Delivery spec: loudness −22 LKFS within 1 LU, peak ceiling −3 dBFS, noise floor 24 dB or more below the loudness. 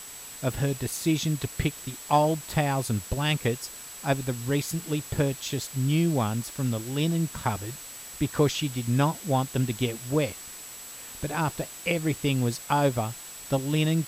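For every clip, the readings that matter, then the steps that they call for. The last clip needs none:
interfering tone 7,800 Hz; level of the tone −43 dBFS; background noise floor −42 dBFS; target noise floor −52 dBFS; integrated loudness −27.5 LKFS; sample peak −9.0 dBFS; target loudness −22.0 LKFS
→ notch filter 7,800 Hz, Q 30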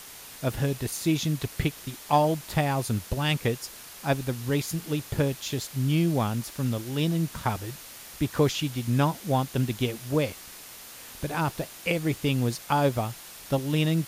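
interfering tone none found; background noise floor −45 dBFS; target noise floor −52 dBFS
→ broadband denoise 7 dB, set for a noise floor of −45 dBFS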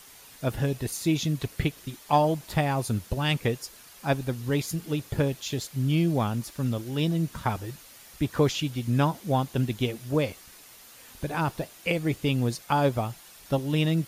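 background noise floor −50 dBFS; target noise floor −52 dBFS
→ broadband denoise 6 dB, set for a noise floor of −50 dBFS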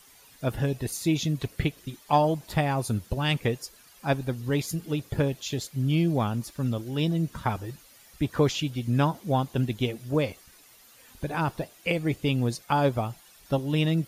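background noise floor −55 dBFS; integrated loudness −28.0 LKFS; sample peak −9.5 dBFS; target loudness −22.0 LKFS
→ level +6 dB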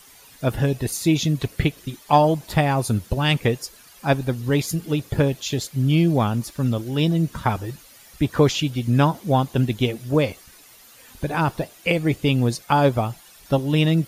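integrated loudness −22.0 LKFS; sample peak −3.5 dBFS; background noise floor −49 dBFS

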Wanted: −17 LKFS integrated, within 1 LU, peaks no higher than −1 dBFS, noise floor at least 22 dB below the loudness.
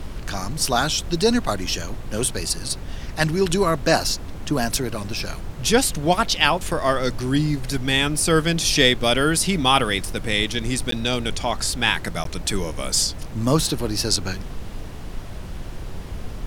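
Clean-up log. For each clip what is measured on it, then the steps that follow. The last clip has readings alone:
number of dropouts 2; longest dropout 13 ms; background noise floor −34 dBFS; target noise floor −44 dBFS; integrated loudness −21.5 LKFS; sample peak −1.0 dBFS; target loudness −17.0 LKFS
→ repair the gap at 0:10.91/0:12.24, 13 ms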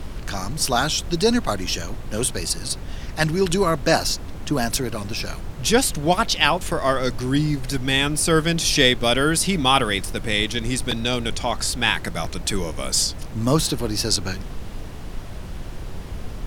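number of dropouts 0; background noise floor −34 dBFS; target noise floor −44 dBFS
→ noise reduction from a noise print 10 dB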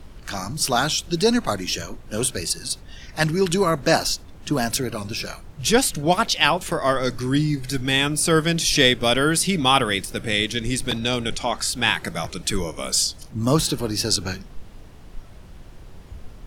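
background noise floor −43 dBFS; target noise floor −44 dBFS
→ noise reduction from a noise print 6 dB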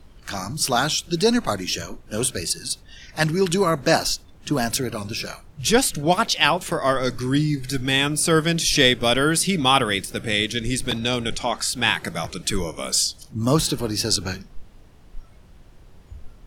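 background noise floor −48 dBFS; integrated loudness −21.5 LKFS; sample peak −1.0 dBFS; target loudness −17.0 LKFS
→ level +4.5 dB
brickwall limiter −1 dBFS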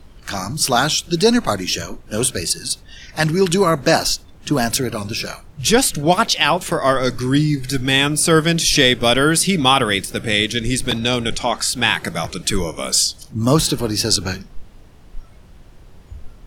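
integrated loudness −17.5 LKFS; sample peak −1.0 dBFS; background noise floor −44 dBFS

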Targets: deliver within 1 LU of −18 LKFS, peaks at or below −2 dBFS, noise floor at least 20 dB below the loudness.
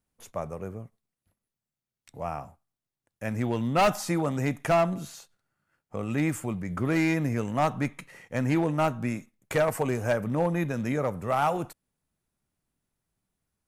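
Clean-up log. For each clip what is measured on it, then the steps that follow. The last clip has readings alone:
share of clipped samples 0.7%; peaks flattened at −17.5 dBFS; integrated loudness −28.0 LKFS; sample peak −17.5 dBFS; target loudness −18.0 LKFS
→ clipped peaks rebuilt −17.5 dBFS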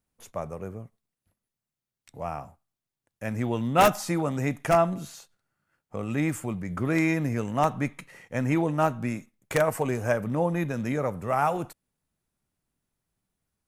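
share of clipped samples 0.0%; integrated loudness −27.0 LKFS; sample peak −8.5 dBFS; target loudness −18.0 LKFS
→ level +9 dB
brickwall limiter −2 dBFS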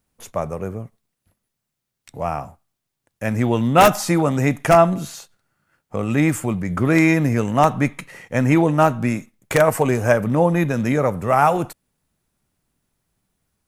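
integrated loudness −18.5 LKFS; sample peak −2.0 dBFS; background noise floor −80 dBFS

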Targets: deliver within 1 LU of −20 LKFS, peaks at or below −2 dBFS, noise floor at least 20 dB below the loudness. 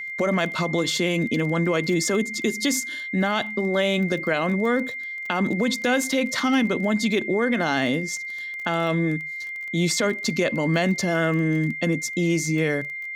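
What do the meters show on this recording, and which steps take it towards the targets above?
crackle rate 22 per second; interfering tone 2,100 Hz; level of the tone −30 dBFS; integrated loudness −23.5 LKFS; sample peak −7.0 dBFS; target loudness −20.0 LKFS
→ click removal
notch filter 2,100 Hz, Q 30
level +3.5 dB

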